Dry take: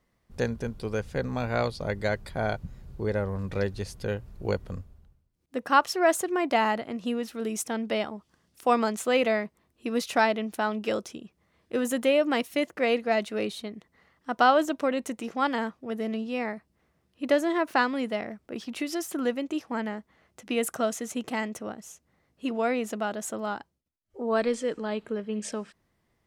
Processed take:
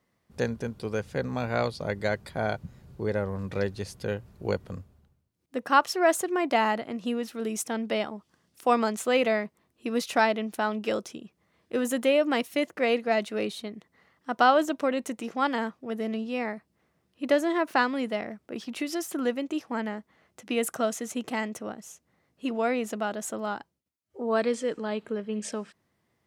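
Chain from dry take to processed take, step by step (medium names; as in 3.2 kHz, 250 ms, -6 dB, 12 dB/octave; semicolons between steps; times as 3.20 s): high-pass 92 Hz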